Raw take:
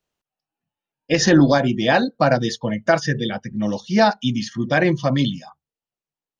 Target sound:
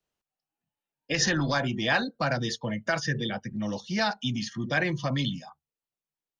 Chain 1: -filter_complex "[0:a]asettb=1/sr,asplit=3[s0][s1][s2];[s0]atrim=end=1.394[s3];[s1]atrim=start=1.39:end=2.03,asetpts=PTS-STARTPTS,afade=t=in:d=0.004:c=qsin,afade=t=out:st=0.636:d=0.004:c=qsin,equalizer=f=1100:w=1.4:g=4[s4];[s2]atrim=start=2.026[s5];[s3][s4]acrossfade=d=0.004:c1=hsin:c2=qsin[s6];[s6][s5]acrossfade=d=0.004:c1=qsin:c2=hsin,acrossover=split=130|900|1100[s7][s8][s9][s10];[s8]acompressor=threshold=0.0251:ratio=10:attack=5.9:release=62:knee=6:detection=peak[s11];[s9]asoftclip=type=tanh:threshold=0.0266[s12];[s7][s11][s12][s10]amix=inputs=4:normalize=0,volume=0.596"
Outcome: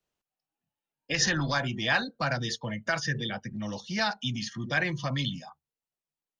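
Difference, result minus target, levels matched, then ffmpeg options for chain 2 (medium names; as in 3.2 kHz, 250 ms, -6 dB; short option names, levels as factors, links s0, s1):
compression: peak gain reduction +6 dB
-filter_complex "[0:a]asettb=1/sr,asplit=3[s0][s1][s2];[s0]atrim=end=1.394[s3];[s1]atrim=start=1.39:end=2.03,asetpts=PTS-STARTPTS,afade=t=in:d=0.004:c=qsin,afade=t=out:st=0.636:d=0.004:c=qsin,equalizer=f=1100:w=1.4:g=4[s4];[s2]atrim=start=2.026[s5];[s3][s4]acrossfade=d=0.004:c1=hsin:c2=qsin[s6];[s6][s5]acrossfade=d=0.004:c1=qsin:c2=hsin,acrossover=split=130|900|1100[s7][s8][s9][s10];[s8]acompressor=threshold=0.0531:ratio=10:attack=5.9:release=62:knee=6:detection=peak[s11];[s9]asoftclip=type=tanh:threshold=0.0266[s12];[s7][s11][s12][s10]amix=inputs=4:normalize=0,volume=0.596"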